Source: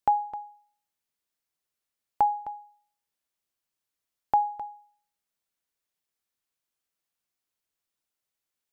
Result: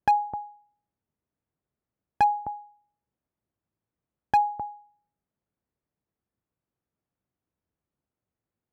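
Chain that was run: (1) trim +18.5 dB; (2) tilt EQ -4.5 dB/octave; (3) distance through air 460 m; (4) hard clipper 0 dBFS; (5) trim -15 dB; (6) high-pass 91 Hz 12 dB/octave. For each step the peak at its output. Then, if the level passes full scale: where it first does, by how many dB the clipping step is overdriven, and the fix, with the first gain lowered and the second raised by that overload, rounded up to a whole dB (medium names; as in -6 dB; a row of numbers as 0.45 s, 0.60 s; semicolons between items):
+5.0 dBFS, +10.0 dBFS, +9.0 dBFS, 0.0 dBFS, -15.0 dBFS, -12.0 dBFS; step 1, 9.0 dB; step 1 +9.5 dB, step 5 -6 dB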